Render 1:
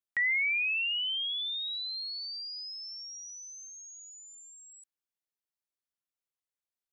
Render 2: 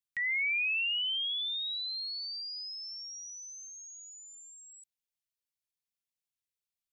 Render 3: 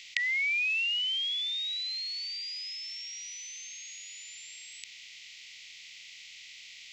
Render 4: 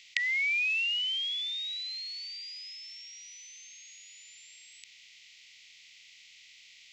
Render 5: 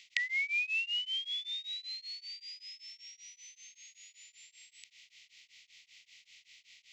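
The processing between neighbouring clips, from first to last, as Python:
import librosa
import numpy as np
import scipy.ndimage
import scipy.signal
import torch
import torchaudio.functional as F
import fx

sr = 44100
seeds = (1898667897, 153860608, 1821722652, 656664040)

y1 = fx.band_shelf(x, sr, hz=640.0, db=-13.5, octaves=3.0)
y2 = fx.bin_compress(y1, sr, power=0.4)
y3 = fx.upward_expand(y2, sr, threshold_db=-42.0, expansion=1.5)
y3 = y3 * librosa.db_to_amplitude(1.0)
y4 = y3 * np.abs(np.cos(np.pi * 5.2 * np.arange(len(y3)) / sr))
y4 = y4 * librosa.db_to_amplitude(-1.5)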